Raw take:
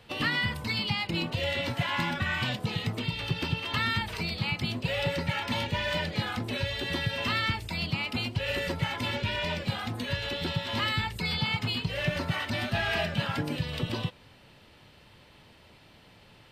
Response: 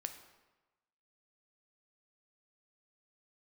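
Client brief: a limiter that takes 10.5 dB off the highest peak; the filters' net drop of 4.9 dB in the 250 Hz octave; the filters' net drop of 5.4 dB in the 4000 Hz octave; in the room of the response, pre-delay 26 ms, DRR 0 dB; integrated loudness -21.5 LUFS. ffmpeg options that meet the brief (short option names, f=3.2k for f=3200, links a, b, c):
-filter_complex "[0:a]equalizer=f=250:t=o:g=-7.5,equalizer=f=4k:t=o:g=-7.5,alimiter=level_in=3.5dB:limit=-24dB:level=0:latency=1,volume=-3.5dB,asplit=2[a][b];[1:a]atrim=start_sample=2205,adelay=26[c];[b][c]afir=irnorm=-1:irlink=0,volume=2dB[d];[a][d]amix=inputs=2:normalize=0,volume=12dB"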